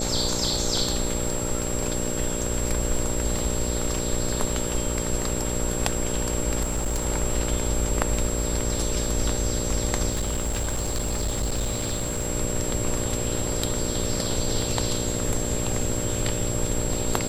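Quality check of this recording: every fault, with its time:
mains buzz 60 Hz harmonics 10 −30 dBFS
surface crackle 14 per second −30 dBFS
whistle 7,600 Hz −31 dBFS
0:06.62–0:07.04: clipping −21 dBFS
0:10.10–0:12.27: clipping −22 dBFS

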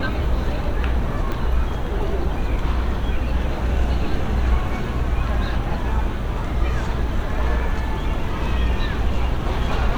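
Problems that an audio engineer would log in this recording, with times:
0:01.32: click −14 dBFS

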